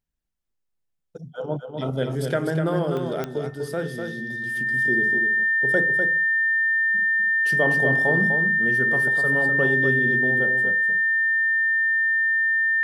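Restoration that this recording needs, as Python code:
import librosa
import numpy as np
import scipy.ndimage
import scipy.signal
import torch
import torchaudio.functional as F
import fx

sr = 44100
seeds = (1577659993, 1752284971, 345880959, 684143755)

y = fx.fix_declick_ar(x, sr, threshold=10.0)
y = fx.notch(y, sr, hz=1800.0, q=30.0)
y = fx.fix_interpolate(y, sr, at_s=(2.97,), length_ms=1.3)
y = fx.fix_echo_inverse(y, sr, delay_ms=249, level_db=-6.0)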